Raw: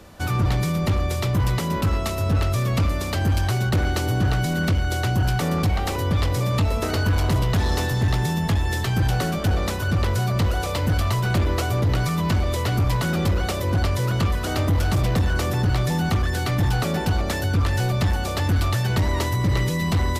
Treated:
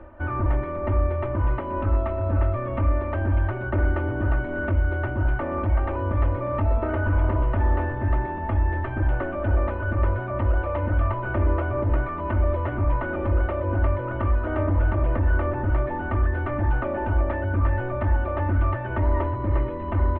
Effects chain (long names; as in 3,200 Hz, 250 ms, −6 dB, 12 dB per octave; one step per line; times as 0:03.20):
reversed playback
upward compression, threshold −27 dBFS
reversed playback
Gaussian smoothing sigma 5.3 samples
parametric band 180 Hz −11 dB 1.2 octaves
comb filter 3.3 ms, depth 83%